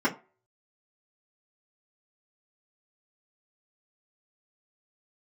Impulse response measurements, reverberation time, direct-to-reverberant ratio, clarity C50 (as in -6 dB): 0.35 s, -8.5 dB, 16.0 dB